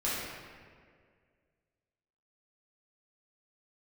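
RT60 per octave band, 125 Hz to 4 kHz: 2.2, 2.1, 2.2, 1.7, 1.7, 1.2 seconds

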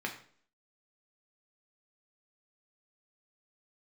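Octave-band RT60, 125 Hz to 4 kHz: 0.50, 0.60, 0.55, 0.50, 0.45, 0.45 seconds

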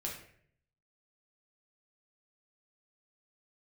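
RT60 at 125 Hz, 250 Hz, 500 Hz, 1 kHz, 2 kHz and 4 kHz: 0.95, 0.70, 0.70, 0.55, 0.60, 0.45 seconds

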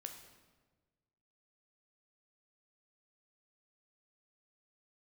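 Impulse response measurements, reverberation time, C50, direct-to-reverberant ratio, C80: 1.4 s, 7.0 dB, 4.0 dB, 9.0 dB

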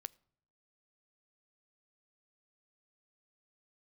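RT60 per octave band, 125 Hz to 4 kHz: 0.80, 0.75, 0.70, 0.60, 0.55, 0.40 seconds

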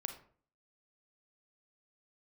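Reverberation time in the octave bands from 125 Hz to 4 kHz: 0.55, 0.60, 0.50, 0.45, 0.40, 0.30 seconds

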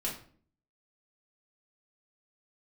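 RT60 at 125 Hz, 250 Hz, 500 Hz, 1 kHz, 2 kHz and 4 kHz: 0.70, 0.70, 0.55, 0.45, 0.40, 0.35 seconds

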